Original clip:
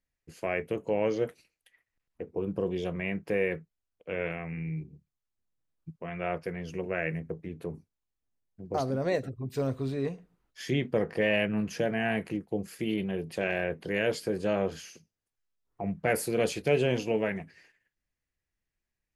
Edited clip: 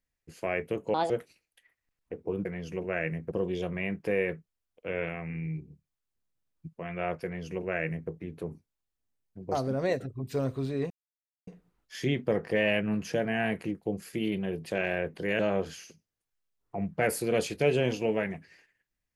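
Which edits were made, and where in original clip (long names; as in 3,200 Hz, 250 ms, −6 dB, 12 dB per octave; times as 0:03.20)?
0:00.94–0:01.19: play speed 154%
0:06.47–0:07.33: duplicate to 0:02.54
0:10.13: splice in silence 0.57 s
0:14.05–0:14.45: remove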